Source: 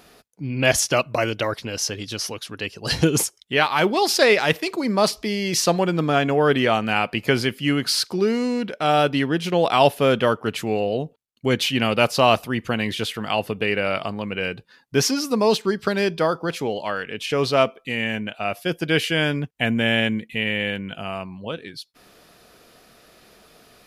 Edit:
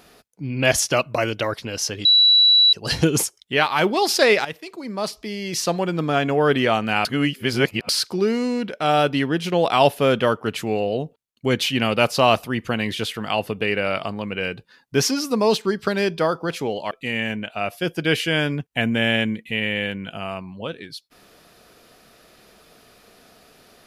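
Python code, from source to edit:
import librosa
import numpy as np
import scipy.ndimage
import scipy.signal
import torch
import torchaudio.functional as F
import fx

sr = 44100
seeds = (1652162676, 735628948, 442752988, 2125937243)

y = fx.edit(x, sr, fx.bleep(start_s=2.05, length_s=0.68, hz=3930.0, db=-10.5),
    fx.fade_in_from(start_s=4.45, length_s=2.0, floor_db=-14.0),
    fx.reverse_span(start_s=7.05, length_s=0.84),
    fx.cut(start_s=16.91, length_s=0.84), tone=tone)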